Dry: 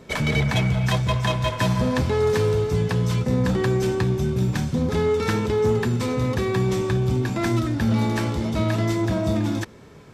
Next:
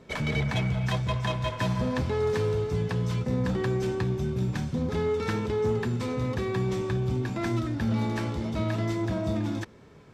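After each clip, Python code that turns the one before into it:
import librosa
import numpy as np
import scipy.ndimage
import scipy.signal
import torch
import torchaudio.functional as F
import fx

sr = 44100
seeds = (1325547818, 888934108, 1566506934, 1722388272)

y = fx.high_shelf(x, sr, hz=8100.0, db=-9.0)
y = y * 10.0 ** (-6.0 / 20.0)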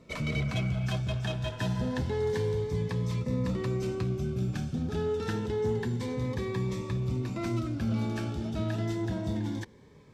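y = fx.notch_cascade(x, sr, direction='rising', hz=0.28)
y = y * 10.0 ** (-2.5 / 20.0)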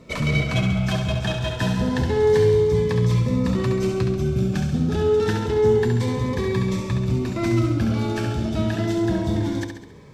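y = fx.echo_feedback(x, sr, ms=68, feedback_pct=52, wet_db=-6)
y = y * 10.0 ** (8.5 / 20.0)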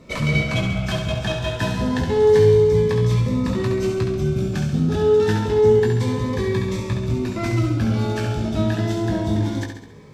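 y = fx.doubler(x, sr, ms=19.0, db=-5.5)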